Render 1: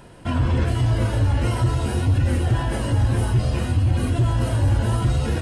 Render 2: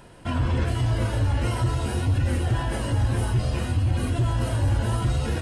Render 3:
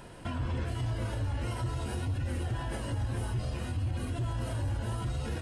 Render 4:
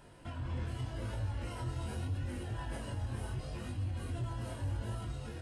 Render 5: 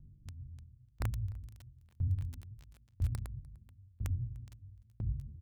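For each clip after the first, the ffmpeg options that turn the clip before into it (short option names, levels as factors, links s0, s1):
-af "equalizer=f=170:w=0.33:g=-2.5,volume=0.841"
-af "alimiter=level_in=1.26:limit=0.0631:level=0:latency=1:release=411,volume=0.794"
-af "flanger=delay=19.5:depth=4.5:speed=0.81,dynaudnorm=f=210:g=5:m=1.41,volume=0.531"
-filter_complex "[0:a]acrossover=split=180[s0][s1];[s1]acrusher=bits=5:mix=0:aa=0.000001[s2];[s0][s2]amix=inputs=2:normalize=0,aecho=1:1:299:0.2,aeval=exprs='val(0)*pow(10,-36*if(lt(mod(1*n/s,1),2*abs(1)/1000),1-mod(1*n/s,1)/(2*abs(1)/1000),(mod(1*n/s,1)-2*abs(1)/1000)/(1-2*abs(1)/1000))/20)':c=same,volume=2.66"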